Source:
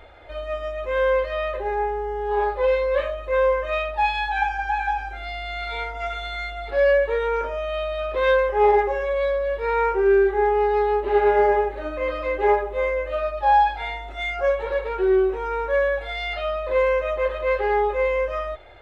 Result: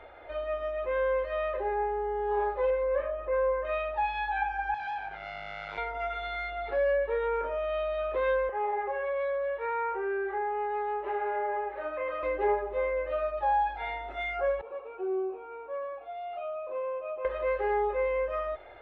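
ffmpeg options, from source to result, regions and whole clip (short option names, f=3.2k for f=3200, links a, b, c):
-filter_complex "[0:a]asettb=1/sr,asplit=3[a][b][c];[a]atrim=end=2.704[d];[b]atrim=start=2.7:end=3.65,asetpts=PTS-STARTPTS,afade=t=in:d=0.004:c=qsin,afade=t=out:st=0.946:d=0.004:c=qsin,lowpass=1.9k,acompressor=mode=upward:threshold=-30dB:ratio=2.5:attack=3.2:release=140:knee=2.83:detection=peak[e];[c]atrim=start=3.646[f];[d][e]acrossfade=d=0.004:c1=hsin:c2=qsin[g];[g][f]acrossfade=d=0.004:c1=qsin:c2=hsin,asettb=1/sr,asplit=3[h][i][j];[h]atrim=end=4.744[k];[i]atrim=start=4.74:end=5.78,asetpts=PTS-STARTPTS,afade=t=in:d=0.004:c=qsin,afade=t=out:st=1.036:d=0.004:c=qsin,asubboost=boost=11:cutoff=190,volume=29dB,asoftclip=hard,volume=-29dB,highpass=120,lowpass=4.5k[l];[j]atrim=start=5.776[m];[k][l]acrossfade=d=0.004:c1=hsin:c2=qsin[n];[n][m]acrossfade=d=0.004:c1=qsin:c2=hsin,asettb=1/sr,asplit=3[o][p][q];[o]atrim=end=8.494[r];[p]atrim=start=8.49:end=12.23,asetpts=PTS-STARTPTS,afade=t=in:d=0.004:c=qsin,afade=t=out:st=3.736:d=0.004:c=qsin,acompressor=threshold=-21dB:ratio=2:attack=3.2:release=140:knee=1:detection=peak,acrossover=split=510 3500:gain=0.224 1 0.224[s][t][u];[s][t][u]amix=inputs=3:normalize=0[v];[q]atrim=start=12.226[w];[r][v]acrossfade=d=0.004:c1=hsin:c2=qsin[x];[x][w]acrossfade=d=0.004:c1=qsin:c2=hsin,asettb=1/sr,asplit=3[y][z][aa];[y]atrim=end=14.614[ab];[z]atrim=start=14.61:end=17.25,asetpts=PTS-STARTPTS,afade=t=in:d=0.004:c=qsin,afade=t=out:st=2.636:d=0.004:c=qsin,asplit=3[ac][ad][ae];[ac]bandpass=f=730:t=q:w=8,volume=0dB[af];[ad]bandpass=f=1.09k:t=q:w=8,volume=-6dB[ag];[ae]bandpass=f=2.44k:t=q:w=8,volume=-9dB[ah];[af][ag][ah]amix=inputs=3:normalize=0,lowshelf=f=430:t=q:w=1.5:g=9.5,asplit=2[ai][aj];[aj]adelay=40,volume=-12dB[ak];[ai][ak]amix=inputs=2:normalize=0,atrim=end_sample=116424[al];[aa]atrim=start=17.246[am];[ab][al]acrossfade=d=0.004:c1=hsin:c2=qsin[an];[an][am]acrossfade=d=0.004:c1=qsin:c2=hsin,bass=f=250:g=-10,treble=f=4k:g=-9,acrossover=split=260[ao][ap];[ap]acompressor=threshold=-31dB:ratio=2[aq];[ao][aq]amix=inputs=2:normalize=0,highshelf=f=3.4k:g=-9.5"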